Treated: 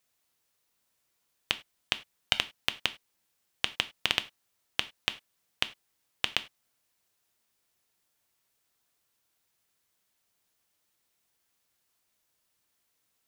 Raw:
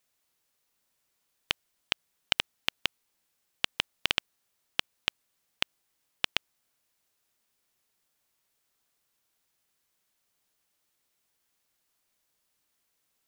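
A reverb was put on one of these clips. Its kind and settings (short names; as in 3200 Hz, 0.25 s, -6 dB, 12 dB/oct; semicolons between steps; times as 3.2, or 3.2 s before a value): non-linear reverb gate 0.12 s falling, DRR 10.5 dB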